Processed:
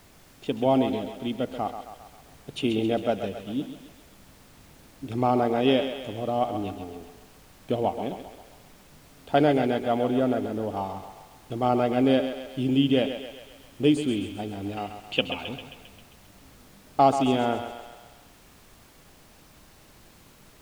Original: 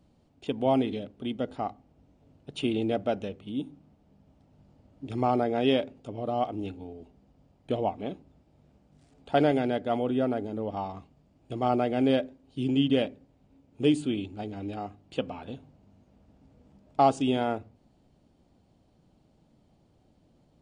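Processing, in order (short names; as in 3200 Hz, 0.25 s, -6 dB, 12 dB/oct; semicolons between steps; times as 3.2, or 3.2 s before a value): 14.76–15.49 bell 2800 Hz +14.5 dB 0.88 oct; added noise pink -57 dBFS; thinning echo 0.133 s, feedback 60%, high-pass 380 Hz, level -8 dB; gain +2.5 dB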